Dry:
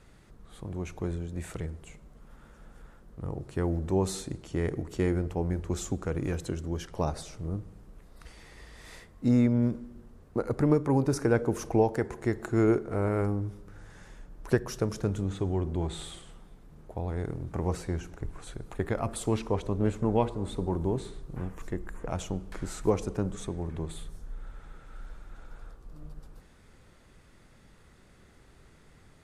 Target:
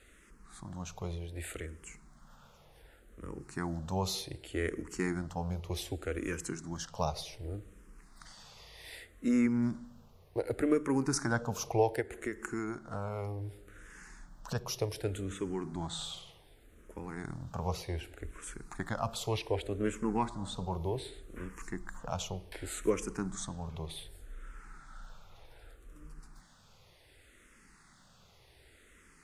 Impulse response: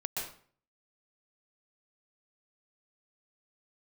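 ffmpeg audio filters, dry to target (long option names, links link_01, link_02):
-filter_complex "[0:a]tiltshelf=frequency=970:gain=-5,asplit=3[link_01][link_02][link_03];[link_01]afade=type=out:start_time=12:duration=0.02[link_04];[link_02]acompressor=threshold=-32dB:ratio=6,afade=type=in:start_time=12:duration=0.02,afade=type=out:start_time=14.54:duration=0.02[link_05];[link_03]afade=type=in:start_time=14.54:duration=0.02[link_06];[link_04][link_05][link_06]amix=inputs=3:normalize=0,asplit=2[link_07][link_08];[link_08]afreqshift=-0.66[link_09];[link_07][link_09]amix=inputs=2:normalize=1,volume=1dB"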